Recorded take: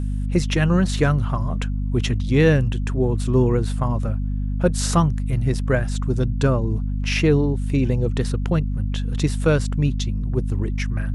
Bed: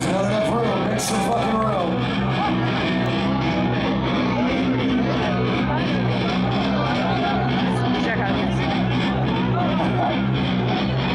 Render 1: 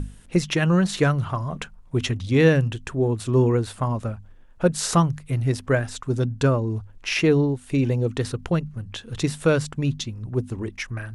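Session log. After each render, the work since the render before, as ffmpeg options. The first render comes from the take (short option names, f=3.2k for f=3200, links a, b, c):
-af "bandreject=f=50:t=h:w=6,bandreject=f=100:t=h:w=6,bandreject=f=150:t=h:w=6,bandreject=f=200:t=h:w=6,bandreject=f=250:t=h:w=6"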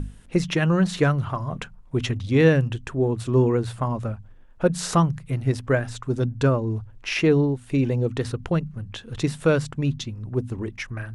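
-af "highshelf=f=4.2k:g=-5.5,bandreject=f=58.85:t=h:w=4,bandreject=f=117.7:t=h:w=4,bandreject=f=176.55:t=h:w=4"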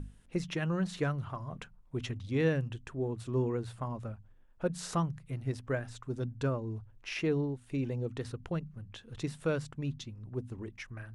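-af "volume=-12dB"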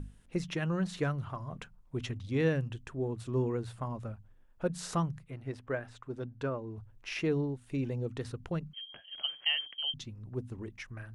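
-filter_complex "[0:a]asettb=1/sr,asplit=3[a][b][c];[a]atrim=end=5.244[d];[b]atrim=start=5.24:end=6.78,asetpts=PTS-STARTPTS,afade=t=in:d=0.004:c=qsin,afade=t=out:st=1.536:d=0.004:c=qsin,bass=f=250:g=-7,treble=f=4k:g=-10[e];[c]atrim=start=6.776[f];[d][e]acrossfade=d=0.004:c1=hsin:c2=qsin[g];[g][f]acrossfade=d=0.004:c1=qsin:c2=hsin,asettb=1/sr,asplit=3[h][i][j];[h]atrim=end=8.734[k];[i]atrim=start=8.73:end=9.94,asetpts=PTS-STARTPTS,afade=t=in:d=0.004:c=qsin,afade=t=out:st=1.206:d=0.004:c=qsin,lowpass=f=2.8k:t=q:w=0.5098,lowpass=f=2.8k:t=q:w=0.6013,lowpass=f=2.8k:t=q:w=0.9,lowpass=f=2.8k:t=q:w=2.563,afreqshift=-3300[l];[j]atrim=start=9.936[m];[k][l]acrossfade=d=0.004:c1=hsin:c2=qsin[n];[n][m]acrossfade=d=0.004:c1=qsin:c2=hsin"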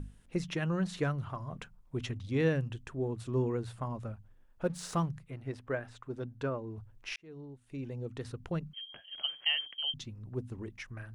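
-filter_complex "[0:a]asettb=1/sr,asplit=3[a][b][c];[a]atrim=end=4.644[d];[b]atrim=start=4.64:end=5.09,asetpts=PTS-STARTPTS,afade=t=in:d=0.004:c=qsin,afade=t=out:st=0.446:d=0.004:c=qsin,aeval=exprs='sgn(val(0))*max(abs(val(0))-0.0015,0)':c=same[e];[c]atrim=start=5.086[f];[d][e]acrossfade=d=0.004:c1=hsin:c2=qsin[g];[g][f]acrossfade=d=0.004:c1=qsin:c2=hsin,asplit=2[h][i];[h]atrim=end=7.16,asetpts=PTS-STARTPTS,afade=t=out:st=7.156:d=0.004:c=hsin[j];[i]atrim=start=7.16,asetpts=PTS-STARTPTS,afade=t=in:d=1.41[k];[j][k]concat=n=2:v=0:a=1"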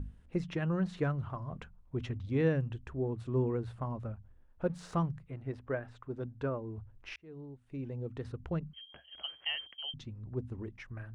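-af "lowpass=f=1.7k:p=1,equalizer=f=67:t=o:w=0.32:g=14.5"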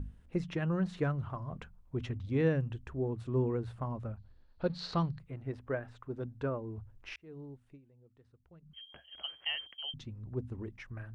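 -filter_complex "[0:a]asettb=1/sr,asplit=3[a][b][c];[a]atrim=end=4.174[d];[b]atrim=start=4.17:end=5.19,asetpts=PTS-STARTPTS,afade=t=in:d=0.004:c=qsin,afade=t=out:st=1.016:d=0.004:c=qsin,lowpass=f=4.3k:t=q:w=10[e];[c]atrim=start=5.186[f];[d][e]acrossfade=d=0.004:c1=hsin:c2=qsin[g];[g][f]acrossfade=d=0.004:c1=qsin:c2=hsin,asplit=3[h][i][j];[h]atrim=end=7.82,asetpts=PTS-STARTPTS,afade=t=out:st=7.67:d=0.15:c=qua:silence=0.0668344[k];[i]atrim=start=7.82:end=8.6,asetpts=PTS-STARTPTS,volume=-23.5dB[l];[j]atrim=start=8.6,asetpts=PTS-STARTPTS,afade=t=in:d=0.15:c=qua:silence=0.0668344[m];[k][l][m]concat=n=3:v=0:a=1"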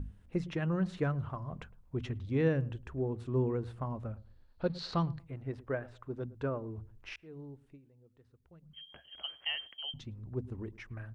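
-filter_complex "[0:a]asplit=2[a][b];[b]adelay=110,lowpass=f=810:p=1,volume=-19dB,asplit=2[c][d];[d]adelay=110,lowpass=f=810:p=1,volume=0.28[e];[a][c][e]amix=inputs=3:normalize=0"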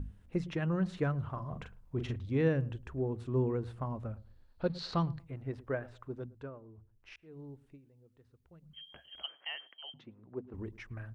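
-filter_complex "[0:a]asettb=1/sr,asplit=3[a][b][c];[a]atrim=end=1.314[d];[b]atrim=start=1.31:end=2.16,asetpts=PTS-STARTPTS,afade=t=in:d=0.004:c=qsin,afade=t=out:st=0.846:d=0.004:c=qsin,asplit=2[e][f];[f]adelay=41,volume=-6dB[g];[e][g]amix=inputs=2:normalize=0,atrim=end_sample=37485[h];[c]atrim=start=2.156[i];[d][h]acrossfade=d=0.004:c1=hsin:c2=qsin[j];[j][i]acrossfade=d=0.004:c1=qsin:c2=hsin,asettb=1/sr,asplit=3[k][l][m];[k]atrim=end=9.264[n];[l]atrim=start=9.26:end=10.54,asetpts=PTS-STARTPTS,afade=t=in:d=0.004:c=qsin,afade=t=out:st=1.276:d=0.004:c=qsin,highpass=270,lowpass=2.2k[o];[m]atrim=start=10.536[p];[n][o]acrossfade=d=0.004:c1=hsin:c2=qsin[q];[q][p]acrossfade=d=0.004:c1=qsin:c2=hsin,asplit=3[r][s][t];[r]atrim=end=6.52,asetpts=PTS-STARTPTS,afade=t=out:st=6.02:d=0.5:silence=0.237137[u];[s]atrim=start=6.52:end=7,asetpts=PTS-STARTPTS,volume=-12.5dB[v];[t]atrim=start=7,asetpts=PTS-STARTPTS,afade=t=in:d=0.5:silence=0.237137[w];[u][v][w]concat=n=3:v=0:a=1"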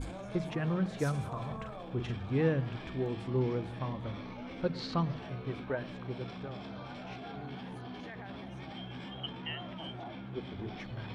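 -filter_complex "[1:a]volume=-23.5dB[a];[0:a][a]amix=inputs=2:normalize=0"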